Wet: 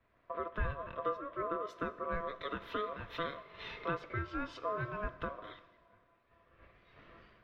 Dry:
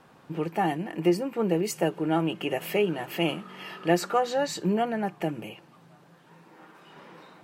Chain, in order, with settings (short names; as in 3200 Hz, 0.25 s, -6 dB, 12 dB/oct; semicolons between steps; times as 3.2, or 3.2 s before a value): compressor 4:1, threshold -39 dBFS, peak gain reduction 19 dB; ring modulator 840 Hz; air absorption 290 m; Schroeder reverb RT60 3.7 s, combs from 30 ms, DRR 12.5 dB; three-band expander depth 100%; gain +5 dB